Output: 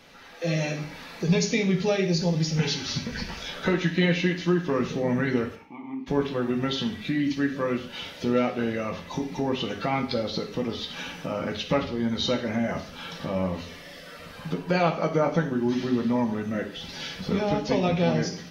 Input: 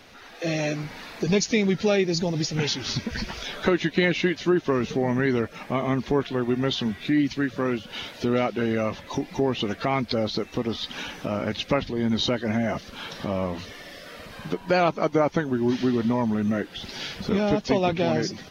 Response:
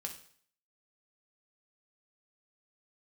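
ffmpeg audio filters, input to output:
-filter_complex "[0:a]asplit=3[a][b][c];[a]afade=t=out:st=5.54:d=0.02[d];[b]asplit=3[e][f][g];[e]bandpass=f=300:t=q:w=8,volume=0dB[h];[f]bandpass=f=870:t=q:w=8,volume=-6dB[i];[g]bandpass=f=2.24k:t=q:w=8,volume=-9dB[j];[h][i][j]amix=inputs=3:normalize=0,afade=t=in:st=5.54:d=0.02,afade=t=out:st=6.06:d=0.02[k];[c]afade=t=in:st=6.06:d=0.02[l];[d][k][l]amix=inputs=3:normalize=0[m];[1:a]atrim=start_sample=2205,afade=t=out:st=0.28:d=0.01,atrim=end_sample=12789[n];[m][n]afir=irnorm=-1:irlink=0"

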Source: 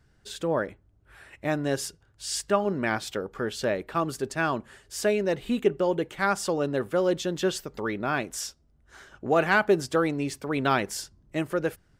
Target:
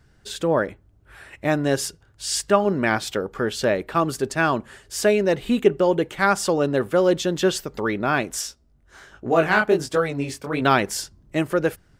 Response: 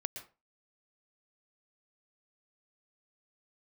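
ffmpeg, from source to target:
-filter_complex "[0:a]asplit=3[a][b][c];[a]afade=t=out:st=8.41:d=0.02[d];[b]flanger=delay=16.5:depth=7.7:speed=1.4,afade=t=in:st=8.41:d=0.02,afade=t=out:st=10.6:d=0.02[e];[c]afade=t=in:st=10.6:d=0.02[f];[d][e][f]amix=inputs=3:normalize=0,volume=6dB"

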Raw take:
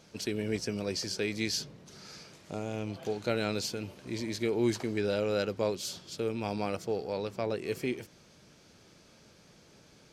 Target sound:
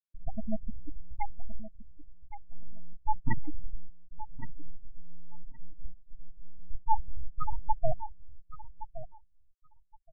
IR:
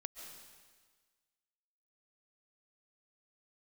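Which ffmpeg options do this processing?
-filter_complex "[0:a]asettb=1/sr,asplit=3[a][b][c];[a]atrim=end=4.014[d];[b]atrim=start=4.01:end=6.71,asetpts=PTS-STARTPTS,afade=t=in:d=0.004:c=qsin,afade=t=out:st=2.696:d=0.004:c=qsin,equalizer=f=330:w=0.58:g=-14.5[e];[c]atrim=start=6.706[f];[d][e]acrossfade=d=0.004:c1=hsin:c2=qsin[g];[g][f]acrossfade=d=0.004:c1=qsin:c2=hsin,aeval=exprs='abs(val(0))':c=same,equalizer=f=100:w=1.3:g=-5.5,afftfilt=real='re*gte(hypot(re,im),0.1)':imag='im*gte(hypot(re,im),0.1)':win_size=1024:overlap=0.75,aecho=1:1:1118|2236:0.211|0.0317,dynaudnorm=f=520:g=9:m=4.5dB,agate=range=-33dB:threshold=-59dB:ratio=3:detection=peak,afftfilt=real='re*eq(mod(floor(b*sr/1024/310),2),0)':imag='im*eq(mod(floor(b*sr/1024/310),2),0)':win_size=1024:overlap=0.75,volume=10dB"

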